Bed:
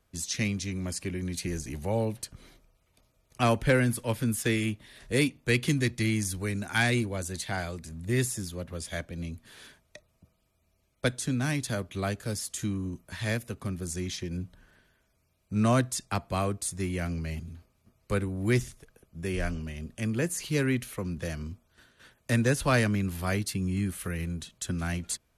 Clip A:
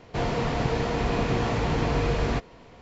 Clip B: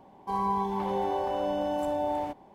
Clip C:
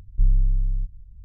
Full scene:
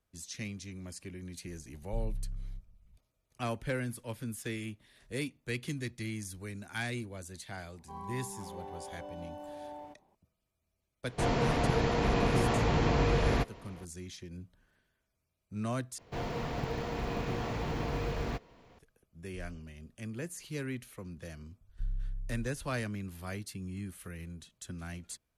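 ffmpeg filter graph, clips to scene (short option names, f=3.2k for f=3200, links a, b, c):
-filter_complex "[3:a]asplit=2[a][b];[1:a]asplit=2[c][d];[0:a]volume=-11dB[e];[a]lowpass=f=210:t=q:w=4.9[f];[d]acrusher=bits=8:mode=log:mix=0:aa=0.000001[g];[e]asplit=2[h][i];[h]atrim=end=15.984[j];[g]atrim=end=2.81,asetpts=PTS-STARTPTS,volume=-9.5dB[k];[i]atrim=start=18.786[l];[f]atrim=end=1.24,asetpts=PTS-STARTPTS,volume=-17.5dB,afade=t=in:d=0.004:c=hsin,afade=t=out:st=1.236:d=0.004:c=hsin,adelay=1740[m];[2:a]atrim=end=2.54,asetpts=PTS-STARTPTS,volume=-15.5dB,afade=t=in:d=0.004:c=hsin,afade=t=out:st=2.536:d=0.004:c=hsin,adelay=7610[n];[c]atrim=end=2.81,asetpts=PTS-STARTPTS,volume=-2.5dB,afade=t=in:d=0.004:c=hsin,afade=t=out:st=2.806:d=0.004:c=hsin,adelay=11040[o];[b]atrim=end=1.24,asetpts=PTS-STARTPTS,volume=-17dB,afade=t=in:d=0.004:c=hsin,afade=t=out:st=1.236:d=0.004:c=hsin,adelay=21610[p];[j][k]acrossfade=d=0.004:c1=hsin:c2=hsin[q];[q][l]acrossfade=d=0.004:c1=hsin:c2=hsin[r];[r][m][n][o][p]amix=inputs=5:normalize=0"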